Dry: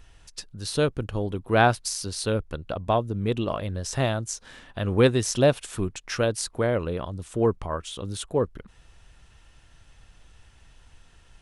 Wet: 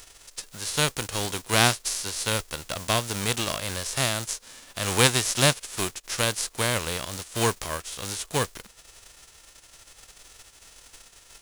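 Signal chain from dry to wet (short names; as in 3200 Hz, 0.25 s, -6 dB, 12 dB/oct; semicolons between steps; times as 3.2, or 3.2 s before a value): spectral whitening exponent 0.3; bell 6800 Hz +5.5 dB 1.5 oct; gain -2.5 dB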